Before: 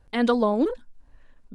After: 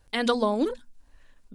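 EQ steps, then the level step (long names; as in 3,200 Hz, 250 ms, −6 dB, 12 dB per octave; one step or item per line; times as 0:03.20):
high-shelf EQ 2,600 Hz +12 dB
mains-hum notches 60/120/180/240 Hz
−3.0 dB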